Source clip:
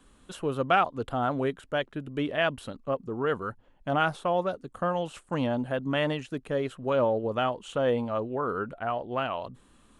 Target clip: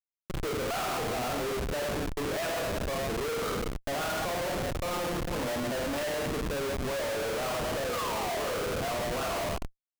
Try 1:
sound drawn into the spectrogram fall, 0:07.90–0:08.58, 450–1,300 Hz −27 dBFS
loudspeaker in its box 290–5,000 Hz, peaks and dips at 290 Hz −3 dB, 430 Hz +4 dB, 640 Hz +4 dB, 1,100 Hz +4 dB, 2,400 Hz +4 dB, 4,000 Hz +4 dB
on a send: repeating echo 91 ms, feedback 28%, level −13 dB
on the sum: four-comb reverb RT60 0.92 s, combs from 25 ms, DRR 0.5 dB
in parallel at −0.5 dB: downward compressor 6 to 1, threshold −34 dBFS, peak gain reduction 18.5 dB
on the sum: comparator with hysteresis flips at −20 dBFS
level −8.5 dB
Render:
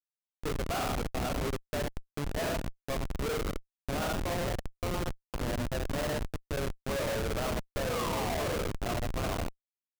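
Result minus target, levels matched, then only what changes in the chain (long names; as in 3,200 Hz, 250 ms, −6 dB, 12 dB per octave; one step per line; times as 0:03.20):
comparator with hysteresis: distortion +6 dB
change: comparator with hysteresis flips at −28.5 dBFS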